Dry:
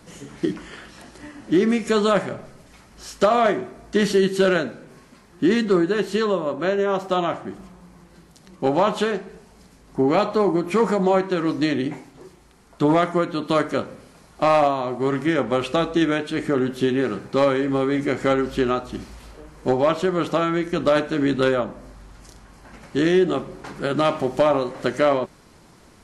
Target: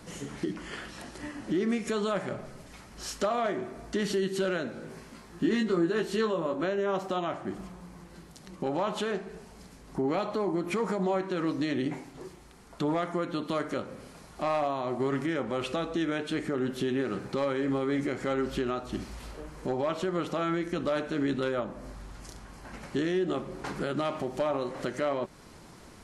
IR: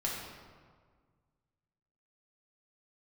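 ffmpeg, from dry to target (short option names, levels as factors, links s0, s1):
-filter_complex "[0:a]alimiter=limit=0.0891:level=0:latency=1:release=283,asettb=1/sr,asplit=3[s0][s1][s2];[s0]atrim=end=4.724[s3];[s1]atrim=start=4.72:end=6.64,asetpts=PTS-STARTPTS,afade=t=in:d=0.004:c=qsin,afade=t=out:st=1.916:d=0.004:c=qsin,asplit=2[s4][s5];[s5]adelay=18,volume=0.631[s6];[s4][s6]amix=inputs=2:normalize=0,atrim=end_sample=84672[s7];[s2]atrim=start=6.636[s8];[s3][s7]acrossfade=d=0.004:c1=hsin:c2=qsin[s9];[s9][s8]acrossfade=d=0.004:c1=qsin:c2=hsin"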